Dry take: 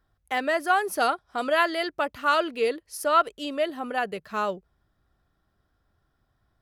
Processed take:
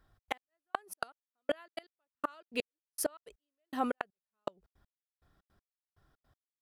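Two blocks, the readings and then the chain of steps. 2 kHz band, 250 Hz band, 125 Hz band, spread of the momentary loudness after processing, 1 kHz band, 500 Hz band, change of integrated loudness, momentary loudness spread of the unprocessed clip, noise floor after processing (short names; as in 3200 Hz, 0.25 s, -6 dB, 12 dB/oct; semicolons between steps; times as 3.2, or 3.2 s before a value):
-16.5 dB, -9.0 dB, n/a, 10 LU, -16.0 dB, -14.0 dB, -14.0 dB, 8 LU, under -85 dBFS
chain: step gate "xx.x...." 161 bpm -60 dB; flipped gate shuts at -19 dBFS, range -34 dB; gain +1.5 dB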